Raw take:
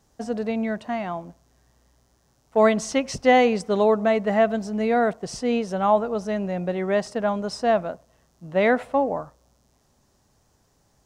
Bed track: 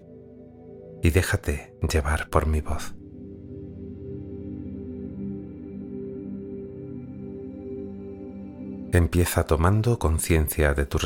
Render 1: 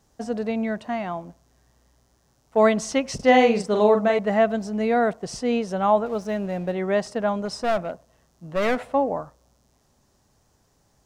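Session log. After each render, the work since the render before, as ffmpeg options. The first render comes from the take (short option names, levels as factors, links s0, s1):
-filter_complex "[0:a]asettb=1/sr,asplit=3[s0][s1][s2];[s0]atrim=end=3.154[s3];[s1]atrim=start=3.15:end=4.19,asetpts=PTS-STARTPTS,afade=t=in:d=0.004:c=qsin,afade=t=out:st=1.036:d=0.004:c=qsin,asplit=2[s4][s5];[s5]adelay=43,volume=0.562[s6];[s4][s6]amix=inputs=2:normalize=0,atrim=end_sample=45864[s7];[s2]atrim=start=4.186[s8];[s3][s7]acrossfade=d=0.004:c1=hsin:c2=qsin[s9];[s9][s8]acrossfade=d=0.004:c1=qsin:c2=hsin,asettb=1/sr,asplit=3[s10][s11][s12];[s10]atrim=end=6.064[s13];[s11]atrim=start=6.06:end=6.72,asetpts=PTS-STARTPTS,afade=t=in:d=0.004:c=qsin,afade=t=out:st=0.656:d=0.004:c=qsin,aeval=exprs='sgn(val(0))*max(abs(val(0))-0.00447,0)':c=same[s14];[s12]atrim=start=6.716[s15];[s13][s14]acrossfade=d=0.004:c1=hsin:c2=qsin[s16];[s16][s15]acrossfade=d=0.004:c1=qsin:c2=hsin,asettb=1/sr,asplit=3[s17][s18][s19];[s17]atrim=end=7.454[s20];[s18]atrim=start=7.45:end=8.83,asetpts=PTS-STARTPTS,afade=t=in:d=0.004:c=qsin,afade=t=out:st=1.376:d=0.004:c=qsin,aeval=exprs='clip(val(0),-1,0.0668)':c=same[s21];[s19]atrim=start=8.826[s22];[s20][s21]acrossfade=d=0.004:c1=hsin:c2=qsin[s23];[s23][s22]acrossfade=d=0.004:c1=qsin:c2=hsin"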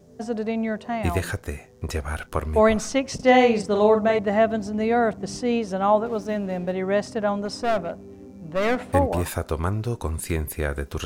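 -filter_complex "[1:a]volume=0.562[s0];[0:a][s0]amix=inputs=2:normalize=0"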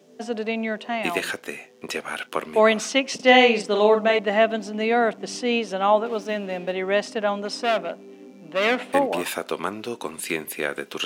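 -af "highpass=f=220:w=0.5412,highpass=f=220:w=1.3066,equalizer=f=2900:t=o:w=1.1:g=10.5"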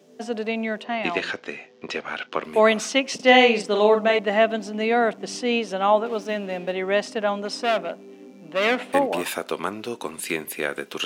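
-filter_complex "[0:a]asettb=1/sr,asplit=3[s0][s1][s2];[s0]atrim=end=0.844[s3];[s1]atrim=start=0.84:end=2.44,asetpts=PTS-STARTPTS,afade=t=in:d=0.004:c=qsin,afade=t=out:st=1.596:d=0.004:c=qsin,lowpass=f=5600:w=0.5412,lowpass=f=5600:w=1.3066[s4];[s2]atrim=start=2.436[s5];[s3][s4]acrossfade=d=0.004:c1=hsin:c2=qsin[s6];[s6][s5]acrossfade=d=0.004:c1=qsin:c2=hsin"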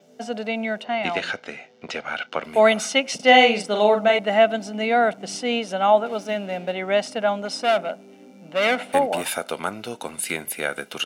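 -af "aecho=1:1:1.4:0.47,adynamicequalizer=threshold=0.00224:dfrequency=9800:dqfactor=3.4:tfrequency=9800:tqfactor=3.4:attack=5:release=100:ratio=0.375:range=3.5:mode=boostabove:tftype=bell"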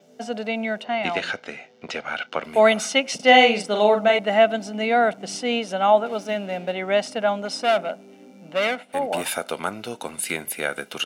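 -filter_complex "[0:a]asplit=3[s0][s1][s2];[s0]atrim=end=8.86,asetpts=PTS-STARTPTS,afade=t=out:st=8.57:d=0.29:silence=0.16788[s3];[s1]atrim=start=8.86:end=8.87,asetpts=PTS-STARTPTS,volume=0.168[s4];[s2]atrim=start=8.87,asetpts=PTS-STARTPTS,afade=t=in:d=0.29:silence=0.16788[s5];[s3][s4][s5]concat=n=3:v=0:a=1"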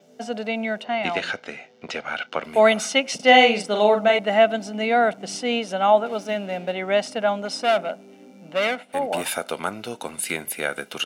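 -af anull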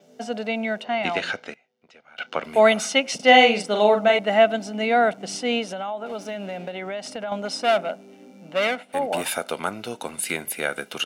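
-filter_complex "[0:a]asettb=1/sr,asplit=3[s0][s1][s2];[s0]atrim=end=5.724[s3];[s1]atrim=start=5.72:end=7.32,asetpts=PTS-STARTPTS,afade=t=in:d=0.004:c=qsin,afade=t=out:st=1.596:d=0.004:c=qsin,acompressor=threshold=0.0447:ratio=6:attack=3.2:release=140:knee=1:detection=peak[s4];[s2]atrim=start=7.316[s5];[s3][s4]acrossfade=d=0.004:c1=hsin:c2=qsin[s6];[s6][s5]acrossfade=d=0.004:c1=qsin:c2=hsin,asplit=3[s7][s8][s9];[s7]atrim=end=1.54,asetpts=PTS-STARTPTS,afade=t=out:st=1.33:d=0.21:c=log:silence=0.0794328[s10];[s8]atrim=start=1.54:end=2.18,asetpts=PTS-STARTPTS,volume=0.0794[s11];[s9]atrim=start=2.18,asetpts=PTS-STARTPTS,afade=t=in:d=0.21:c=log:silence=0.0794328[s12];[s10][s11][s12]concat=n=3:v=0:a=1"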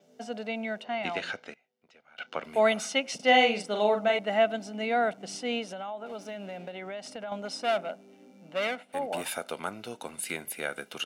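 -af "volume=0.422"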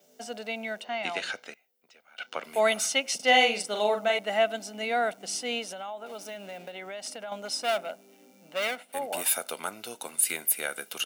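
-af "aemphasis=mode=production:type=bsi"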